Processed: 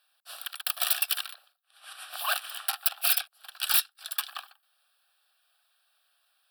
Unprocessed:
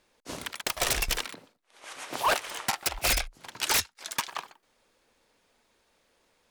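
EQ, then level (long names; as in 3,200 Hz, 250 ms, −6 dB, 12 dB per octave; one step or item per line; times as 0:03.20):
elliptic high-pass filter 770 Hz, stop band 80 dB
high-shelf EQ 7,100 Hz +11.5 dB
phaser with its sweep stopped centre 1,400 Hz, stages 8
0.0 dB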